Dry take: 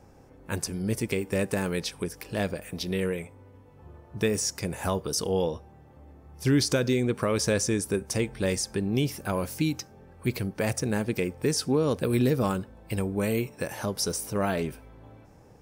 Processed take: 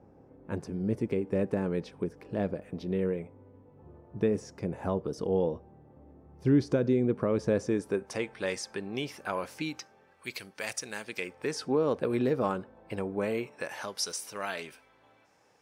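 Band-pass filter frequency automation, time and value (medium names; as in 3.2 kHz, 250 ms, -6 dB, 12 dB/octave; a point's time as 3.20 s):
band-pass filter, Q 0.54
7.46 s 300 Hz
8.31 s 1.4 kHz
9.68 s 1.4 kHz
10.32 s 3.7 kHz
11.04 s 3.7 kHz
11.74 s 750 Hz
13.22 s 750 Hz
14.06 s 3.1 kHz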